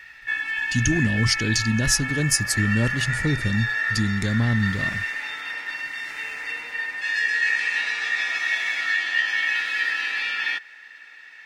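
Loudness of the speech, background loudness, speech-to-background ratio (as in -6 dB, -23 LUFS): -23.5 LUFS, -24.5 LUFS, 1.0 dB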